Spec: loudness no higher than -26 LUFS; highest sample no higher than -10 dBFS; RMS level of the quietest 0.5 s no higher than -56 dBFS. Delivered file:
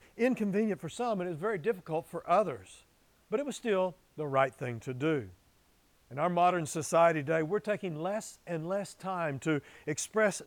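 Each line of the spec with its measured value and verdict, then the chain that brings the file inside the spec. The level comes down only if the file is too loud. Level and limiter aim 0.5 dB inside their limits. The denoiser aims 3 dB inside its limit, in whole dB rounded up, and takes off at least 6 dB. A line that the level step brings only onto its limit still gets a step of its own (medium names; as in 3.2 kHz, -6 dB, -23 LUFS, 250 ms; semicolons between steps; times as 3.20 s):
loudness -32.0 LUFS: pass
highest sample -13.5 dBFS: pass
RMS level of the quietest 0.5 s -67 dBFS: pass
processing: none needed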